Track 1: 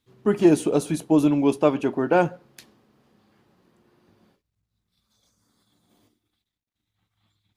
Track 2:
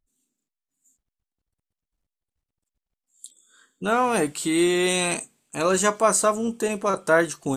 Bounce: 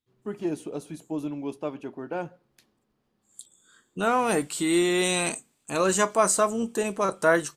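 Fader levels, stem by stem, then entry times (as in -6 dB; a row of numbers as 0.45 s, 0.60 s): -13.0 dB, -2.0 dB; 0.00 s, 0.15 s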